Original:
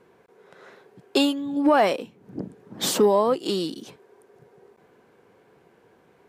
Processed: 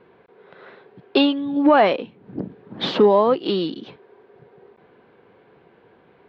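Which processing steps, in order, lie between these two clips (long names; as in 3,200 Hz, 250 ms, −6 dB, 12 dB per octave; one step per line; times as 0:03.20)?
Butterworth low-pass 4,000 Hz 36 dB per octave
level +4 dB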